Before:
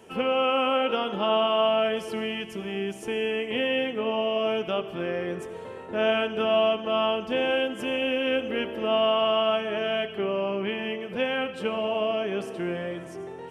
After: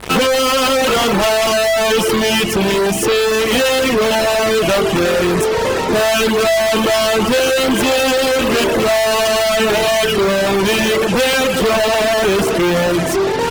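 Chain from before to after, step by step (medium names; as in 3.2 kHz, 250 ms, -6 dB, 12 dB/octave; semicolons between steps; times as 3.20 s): fuzz box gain 47 dB, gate -47 dBFS; reverb removal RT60 0.74 s; hum 50 Hz, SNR 26 dB; trim +2 dB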